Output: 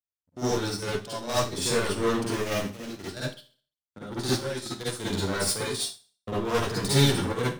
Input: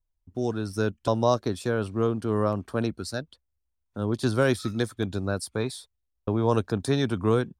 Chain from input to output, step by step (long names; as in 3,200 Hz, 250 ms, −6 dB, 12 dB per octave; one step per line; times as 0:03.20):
0:02.26–0:03.12: gap after every zero crossing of 0.3 ms
high-pass filter 71 Hz 12 dB per octave
parametric band 6,000 Hz +11 dB 2.5 octaves
leveller curve on the samples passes 3
0:04.04–0:05.00: output level in coarse steps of 15 dB
gate pattern "xxxxxx.xx..x.x" 128 BPM −12 dB
soft clipping −18 dBFS, distortion −8 dB
0:05.70–0:06.31: hollow resonant body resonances 220/690/2,800 Hz, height 12 dB → 8 dB
convolution reverb RT60 0.45 s, pre-delay 44 ms, DRR −7.5 dB
expander for the loud parts 1.5 to 1, over −35 dBFS
level −8 dB